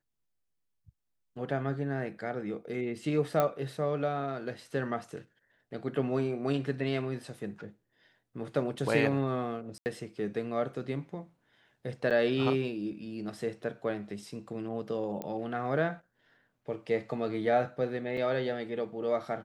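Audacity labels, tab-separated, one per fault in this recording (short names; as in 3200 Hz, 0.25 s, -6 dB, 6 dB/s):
3.400000	3.400000	pop -14 dBFS
9.780000	9.860000	gap 79 ms
12.100000	12.110000	gap 6.7 ms
15.220000	15.220000	pop -22 dBFS
18.170000	18.170000	gap 4.2 ms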